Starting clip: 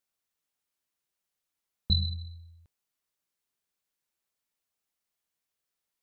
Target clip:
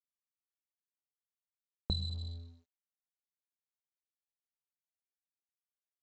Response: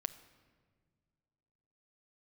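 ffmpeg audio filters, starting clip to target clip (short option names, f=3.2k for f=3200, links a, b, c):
-af "acompressor=threshold=-38dB:ratio=4,aresample=16000,aeval=exprs='sgn(val(0))*max(abs(val(0))-0.00158,0)':c=same,aresample=44100,volume=5dB"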